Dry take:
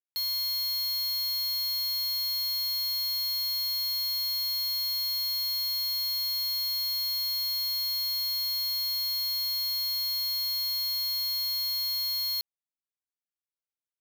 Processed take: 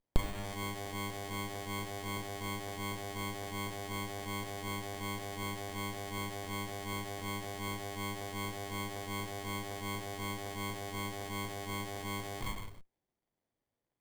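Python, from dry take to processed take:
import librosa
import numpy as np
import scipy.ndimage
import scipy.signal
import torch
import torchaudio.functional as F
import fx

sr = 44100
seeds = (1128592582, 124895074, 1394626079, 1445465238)

y = fx.rev_gated(x, sr, seeds[0], gate_ms=410, shape='falling', drr_db=3.0)
y = fx.filter_lfo_notch(y, sr, shape='sine', hz=2.7, low_hz=740.0, high_hz=2400.0, q=0.71)
y = fx.running_max(y, sr, window=33)
y = y * 10.0 ** (11.5 / 20.0)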